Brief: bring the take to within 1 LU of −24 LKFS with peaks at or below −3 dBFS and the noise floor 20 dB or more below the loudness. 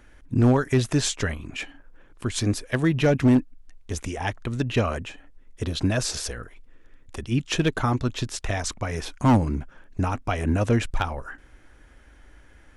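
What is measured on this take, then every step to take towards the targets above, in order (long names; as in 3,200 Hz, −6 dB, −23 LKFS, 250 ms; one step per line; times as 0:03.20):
share of clipped samples 0.5%; peaks flattened at −12.5 dBFS; integrated loudness −25.0 LKFS; sample peak −12.5 dBFS; target loudness −24.0 LKFS
→ clipped peaks rebuilt −12.5 dBFS
level +1 dB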